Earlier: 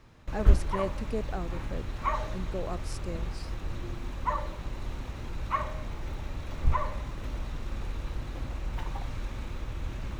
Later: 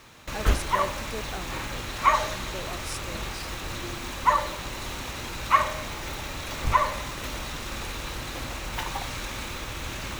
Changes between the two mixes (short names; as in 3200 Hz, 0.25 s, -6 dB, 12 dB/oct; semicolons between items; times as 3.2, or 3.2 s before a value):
background +9.5 dB; master: add tilt +3 dB/oct